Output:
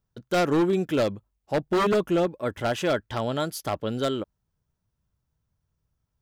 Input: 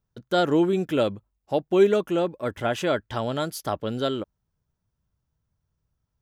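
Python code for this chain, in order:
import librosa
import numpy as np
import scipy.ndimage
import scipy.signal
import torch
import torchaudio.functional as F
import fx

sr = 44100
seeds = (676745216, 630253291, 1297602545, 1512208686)

y = fx.low_shelf(x, sr, hz=160.0, db=9.5, at=(1.57, 2.27))
y = 10.0 ** (-16.5 / 20.0) * (np.abs((y / 10.0 ** (-16.5 / 20.0) + 3.0) % 4.0 - 2.0) - 1.0)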